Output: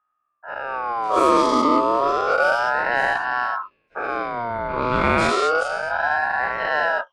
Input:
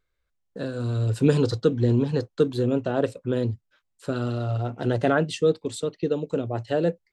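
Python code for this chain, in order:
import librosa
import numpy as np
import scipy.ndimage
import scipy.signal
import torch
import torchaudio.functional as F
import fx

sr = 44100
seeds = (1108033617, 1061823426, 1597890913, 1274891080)

y = fx.spec_dilate(x, sr, span_ms=240)
y = fx.env_lowpass(y, sr, base_hz=750.0, full_db=-10.5)
y = fx.ring_lfo(y, sr, carrier_hz=1000.0, swing_pct=25, hz=0.31)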